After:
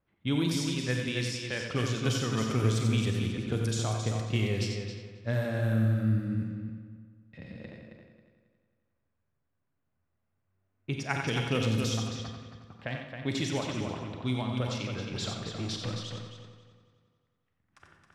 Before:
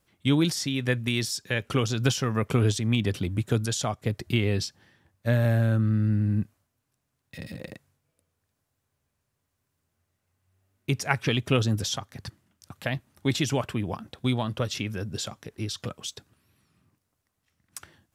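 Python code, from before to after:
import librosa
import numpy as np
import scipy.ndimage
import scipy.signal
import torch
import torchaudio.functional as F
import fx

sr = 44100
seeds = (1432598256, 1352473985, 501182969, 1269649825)

p1 = fx.leveller(x, sr, passes=2, at=(15.11, 15.91))
p2 = p1 + fx.echo_heads(p1, sr, ms=90, heads='first and third', feedback_pct=47, wet_db=-6.5, dry=0)
p3 = fx.rev_schroeder(p2, sr, rt60_s=0.96, comb_ms=32, drr_db=5.0)
p4 = fx.env_lowpass(p3, sr, base_hz=2000.0, full_db=-17.0)
y = p4 * 10.0 ** (-7.0 / 20.0)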